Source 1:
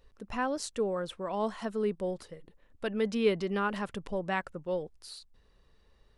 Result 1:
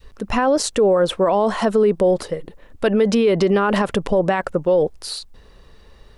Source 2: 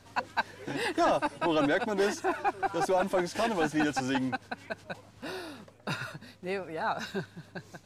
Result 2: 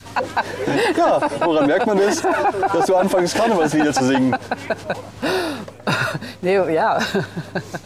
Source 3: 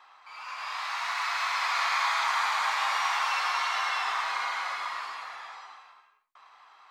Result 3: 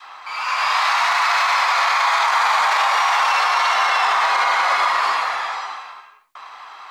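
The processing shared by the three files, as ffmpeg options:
ffmpeg -i in.wav -af "adynamicequalizer=threshold=0.00891:dfrequency=550:dqfactor=0.75:tfrequency=550:tqfactor=0.75:attack=5:release=100:ratio=0.375:range=3.5:mode=boostabove:tftype=bell,alimiter=level_in=25dB:limit=-1dB:release=50:level=0:latency=1,volume=-8dB" out.wav

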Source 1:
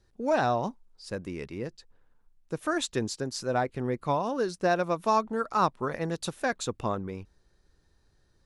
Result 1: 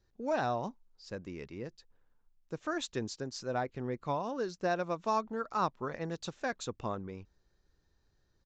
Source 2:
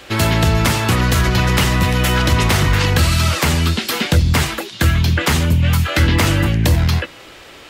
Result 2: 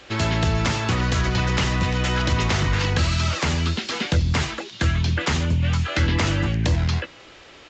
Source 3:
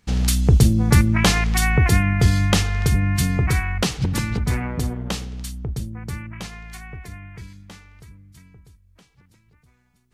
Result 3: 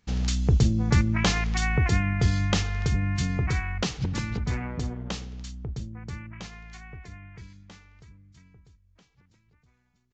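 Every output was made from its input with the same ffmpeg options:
ffmpeg -i in.wav -af "aresample=16000,aresample=44100,volume=-6.5dB" out.wav

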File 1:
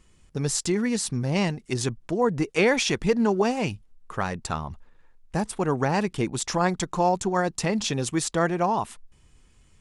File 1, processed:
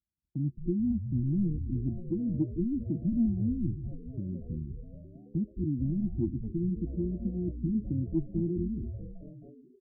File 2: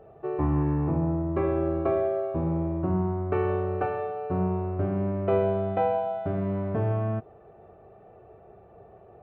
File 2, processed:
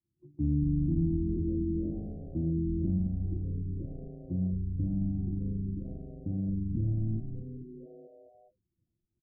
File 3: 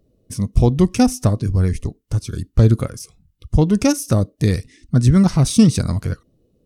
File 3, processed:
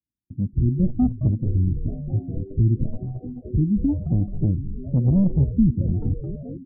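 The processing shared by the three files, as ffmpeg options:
ffmpeg -i in.wav -filter_complex "[0:a]highpass=frequency=46:width=0.5412,highpass=frequency=46:width=1.3066,afftfilt=real='re*(1-between(b*sr/4096,360,6300))':imag='im*(1-between(b*sr/4096,360,6300))':win_size=4096:overlap=0.75,agate=range=-33dB:threshold=-43dB:ratio=3:detection=peak,acrossover=split=390[link_01][link_02];[link_02]acompressor=threshold=-33dB:ratio=20[link_03];[link_01][link_03]amix=inputs=2:normalize=0,asoftclip=type=tanh:threshold=-10dB,asplit=2[link_04][link_05];[link_05]asplit=7[link_06][link_07][link_08][link_09][link_10][link_11][link_12];[link_06]adelay=216,afreqshift=-120,volume=-8dB[link_13];[link_07]adelay=432,afreqshift=-240,volume=-12.6dB[link_14];[link_08]adelay=648,afreqshift=-360,volume=-17.2dB[link_15];[link_09]adelay=864,afreqshift=-480,volume=-21.7dB[link_16];[link_10]adelay=1080,afreqshift=-600,volume=-26.3dB[link_17];[link_11]adelay=1296,afreqshift=-720,volume=-30.9dB[link_18];[link_12]adelay=1512,afreqshift=-840,volume=-35.5dB[link_19];[link_13][link_14][link_15][link_16][link_17][link_18][link_19]amix=inputs=7:normalize=0[link_20];[link_04][link_20]amix=inputs=2:normalize=0,afftfilt=real='re*lt(b*sr/1024,400*pow(2800/400,0.5+0.5*sin(2*PI*1*pts/sr)))':imag='im*lt(b*sr/1024,400*pow(2800/400,0.5+0.5*sin(2*PI*1*pts/sr)))':win_size=1024:overlap=0.75,volume=-2.5dB" out.wav

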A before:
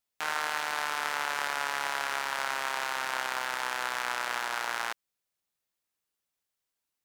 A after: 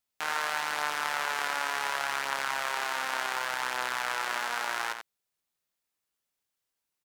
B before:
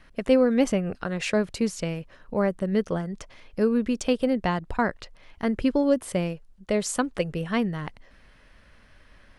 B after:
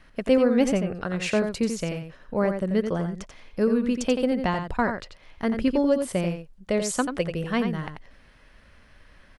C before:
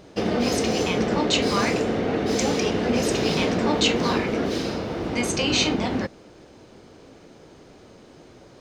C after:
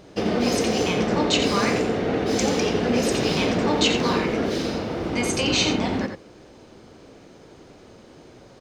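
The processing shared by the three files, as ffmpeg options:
ffmpeg -i in.wav -filter_complex "[0:a]asplit=2[link_01][link_02];[link_02]adelay=87.46,volume=-7dB,highshelf=frequency=4000:gain=-1.97[link_03];[link_01][link_03]amix=inputs=2:normalize=0" out.wav

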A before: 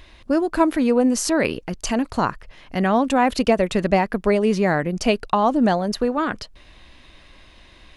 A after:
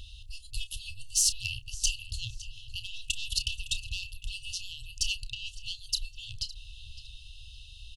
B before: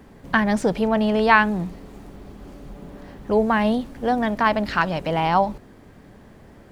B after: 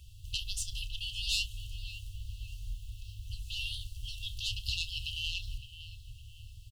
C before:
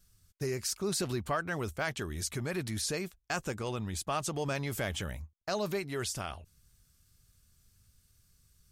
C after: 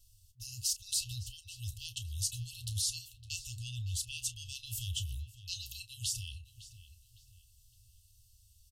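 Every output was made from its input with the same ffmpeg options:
ffmpeg -i in.wav -filter_complex "[0:a]asplit=2[link_01][link_02];[link_02]adelay=560,lowpass=frequency=3300:poles=1,volume=-13dB,asplit=2[link_03][link_04];[link_04]adelay=560,lowpass=frequency=3300:poles=1,volume=0.43,asplit=2[link_05][link_06];[link_06]adelay=560,lowpass=frequency=3300:poles=1,volume=0.43,asplit=2[link_07][link_08];[link_08]adelay=560,lowpass=frequency=3300:poles=1,volume=0.43[link_09];[link_03][link_05][link_07][link_09]amix=inputs=4:normalize=0[link_10];[link_01][link_10]amix=inputs=2:normalize=0,asoftclip=type=tanh:threshold=-13.5dB,asplit=2[link_11][link_12];[link_12]adelay=31,volume=-13dB[link_13];[link_11][link_13]amix=inputs=2:normalize=0,afftfilt=real='re*(1-between(b*sr/4096,120,2600))':imag='im*(1-between(b*sr/4096,120,2600))':win_size=4096:overlap=0.75,volume=2dB" out.wav

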